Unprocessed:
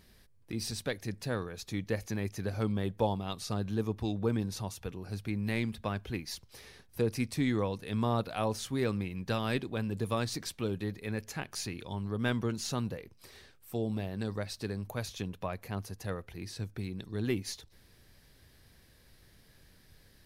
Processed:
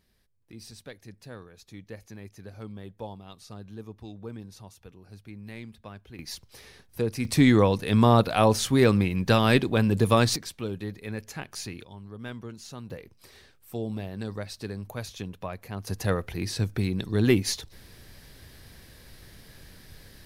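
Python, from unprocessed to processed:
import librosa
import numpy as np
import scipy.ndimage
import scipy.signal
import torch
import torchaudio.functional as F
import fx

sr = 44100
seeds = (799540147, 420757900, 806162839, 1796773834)

y = fx.gain(x, sr, db=fx.steps((0.0, -9.0), (6.19, 2.5), (7.25, 11.5), (10.36, 1.0), (11.84, -7.5), (12.9, 1.0), (15.87, 11.0)))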